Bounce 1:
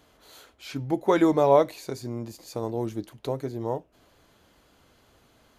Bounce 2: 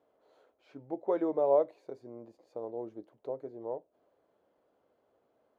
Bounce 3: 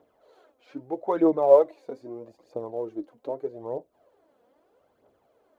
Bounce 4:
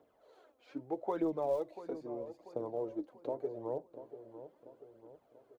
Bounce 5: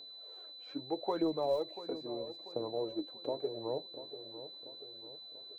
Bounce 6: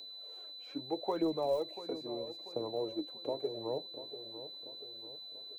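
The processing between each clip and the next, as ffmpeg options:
ffmpeg -i in.wav -af "bandpass=frequency=540:width_type=q:width=1.8:csg=0,volume=-5.5dB" out.wav
ffmpeg -i in.wav -af "aphaser=in_gain=1:out_gain=1:delay=4.3:decay=0.57:speed=0.79:type=triangular,volume=6dB" out.wav
ffmpeg -i in.wav -filter_complex "[0:a]acrossover=split=170|3000[link_01][link_02][link_03];[link_02]acompressor=threshold=-27dB:ratio=6[link_04];[link_01][link_04][link_03]amix=inputs=3:normalize=0,asplit=2[link_05][link_06];[link_06]adelay=689,lowpass=frequency=1400:poles=1,volume=-12dB,asplit=2[link_07][link_08];[link_08]adelay=689,lowpass=frequency=1400:poles=1,volume=0.52,asplit=2[link_09][link_10];[link_10]adelay=689,lowpass=frequency=1400:poles=1,volume=0.52,asplit=2[link_11][link_12];[link_12]adelay=689,lowpass=frequency=1400:poles=1,volume=0.52,asplit=2[link_13][link_14];[link_14]adelay=689,lowpass=frequency=1400:poles=1,volume=0.52[link_15];[link_05][link_07][link_09][link_11][link_13][link_15]amix=inputs=6:normalize=0,volume=-4.5dB" out.wav
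ffmpeg -i in.wav -af "aeval=exprs='val(0)+0.00355*sin(2*PI*4000*n/s)':channel_layout=same,volume=1dB" out.wav
ffmpeg -i in.wav -filter_complex "[0:a]acrossover=split=360|1800[link_01][link_02][link_03];[link_03]alimiter=level_in=26dB:limit=-24dB:level=0:latency=1,volume=-26dB[link_04];[link_01][link_02][link_04]amix=inputs=3:normalize=0,aexciter=amount=2.3:drive=3.8:freq=2200" out.wav

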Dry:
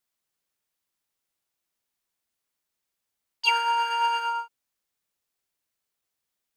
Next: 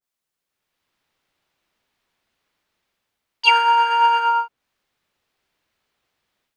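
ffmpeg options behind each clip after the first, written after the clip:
ffmpeg -i in.wav -filter_complex "[0:a]acrossover=split=4300[link_01][link_02];[link_01]dynaudnorm=framelen=460:gausssize=3:maxgain=16dB[link_03];[link_03][link_02]amix=inputs=2:normalize=0,adynamicequalizer=threshold=0.0282:dfrequency=1800:dqfactor=0.7:tfrequency=1800:tqfactor=0.7:attack=5:release=100:ratio=0.375:range=3:mode=cutabove:tftype=highshelf,volume=-1dB" out.wav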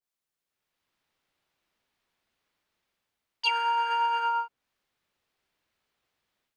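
ffmpeg -i in.wav -af "acompressor=threshold=-18dB:ratio=6,volume=-5.5dB" out.wav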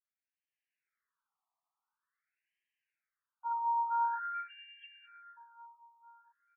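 ffmpeg -i in.wav -filter_complex "[0:a]asplit=2[link_01][link_02];[link_02]adelay=18,volume=-12dB[link_03];[link_01][link_03]amix=inputs=2:normalize=0,aecho=1:1:453|906|1359|1812|2265|2718:0.299|0.152|0.0776|0.0396|0.0202|0.0103,afftfilt=real='re*between(b*sr/1024,910*pow(2300/910,0.5+0.5*sin(2*PI*0.47*pts/sr))/1.41,910*pow(2300/910,0.5+0.5*sin(2*PI*0.47*pts/sr))*1.41)':imag='im*between(b*sr/1024,910*pow(2300/910,0.5+0.5*sin(2*PI*0.47*pts/sr))/1.41,910*pow(2300/910,0.5+0.5*sin(2*PI*0.47*pts/sr))*1.41)':win_size=1024:overlap=0.75,volume=-5dB" out.wav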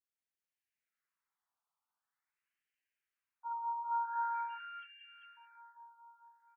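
ffmpeg -i in.wav -af "aecho=1:1:171|200|393:0.473|0.282|0.631,volume=-5dB" out.wav

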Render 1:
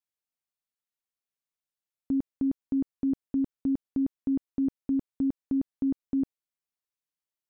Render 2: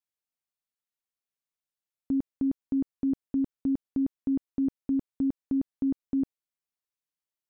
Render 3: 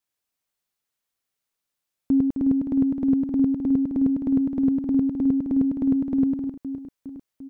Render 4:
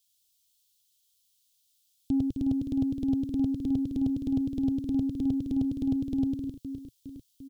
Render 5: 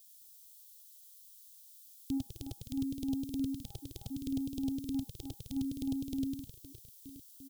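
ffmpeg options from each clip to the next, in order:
ffmpeg -i in.wav -af anull out.wav
ffmpeg -i in.wav -filter_complex "[0:a]acontrast=88,asplit=2[link_01][link_02];[link_02]aecho=0:1:100|260|516|925.6|1581:0.631|0.398|0.251|0.158|0.1[link_03];[link_01][link_03]amix=inputs=2:normalize=0" out.wav
ffmpeg -i in.wav -af "firequalizer=gain_entry='entry(120,0);entry(180,-13);entry(310,-11);entry(490,-12);entry(730,-24);entry(1300,-21);entry(1800,-18);entry(3200,8)':delay=0.05:min_phase=1,asoftclip=type=tanh:threshold=-22dB,volume=5.5dB" out.wav
ffmpeg -i in.wav -af "crystalizer=i=7.5:c=0,afftfilt=real='re*(1-between(b*sr/1024,210*pow(1700/210,0.5+0.5*sin(2*PI*0.71*pts/sr))/1.41,210*pow(1700/210,0.5+0.5*sin(2*PI*0.71*pts/sr))*1.41))':imag='im*(1-between(b*sr/1024,210*pow(1700/210,0.5+0.5*sin(2*PI*0.71*pts/sr))/1.41,210*pow(1700/210,0.5+0.5*sin(2*PI*0.71*pts/sr))*1.41))':win_size=1024:overlap=0.75,volume=-8dB" out.wav

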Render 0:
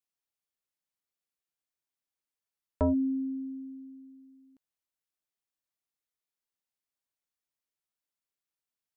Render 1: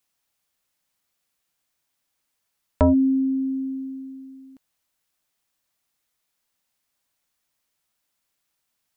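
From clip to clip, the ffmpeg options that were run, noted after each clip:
ffmpeg -i in.wav -filter_complex "[0:a]equalizer=frequency=400:width_type=o:width=0.46:gain=-5,asplit=2[link_01][link_02];[link_02]acompressor=threshold=-39dB:ratio=6,volume=2.5dB[link_03];[link_01][link_03]amix=inputs=2:normalize=0,volume=7.5dB" out.wav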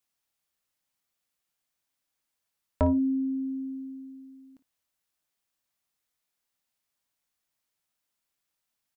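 ffmpeg -i in.wav -af "aecho=1:1:24|56:0.224|0.168,volume=-6.5dB" out.wav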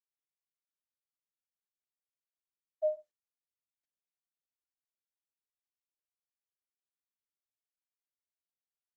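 ffmpeg -i in.wav -af "aeval=exprs='sgn(val(0))*max(abs(val(0))-0.00355,0)':channel_layout=same,asuperpass=centerf=650:order=20:qfactor=6.4" -ar 48000 -c:a libopus -b:a 16k out.opus

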